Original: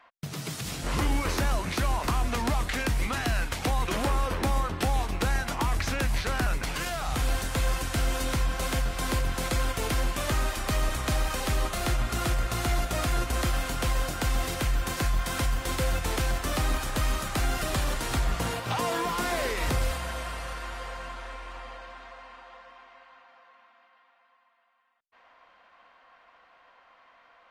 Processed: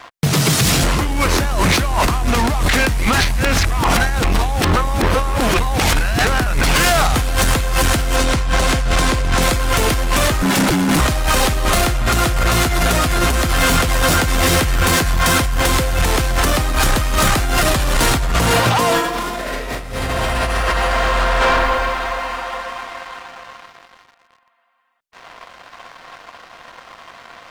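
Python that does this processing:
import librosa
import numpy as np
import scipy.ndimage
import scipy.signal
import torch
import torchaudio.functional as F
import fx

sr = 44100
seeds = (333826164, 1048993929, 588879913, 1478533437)

y = fx.lowpass(x, sr, hz=9000.0, slope=12, at=(8.16, 9.42))
y = fx.ring_mod(y, sr, carrier_hz=230.0, at=(10.42, 11.0))
y = fx.doubler(y, sr, ms=12.0, db=-7.5, at=(12.35, 15.4))
y = fx.reverb_throw(y, sr, start_s=18.95, length_s=2.43, rt60_s=1.7, drr_db=-11.0)
y = fx.edit(y, sr, fx.reverse_span(start_s=3.2, length_s=3.05), tone=tone)
y = fx.over_compress(y, sr, threshold_db=-32.0, ratio=-1.0)
y = fx.leveller(y, sr, passes=3)
y = y * librosa.db_to_amplitude(6.5)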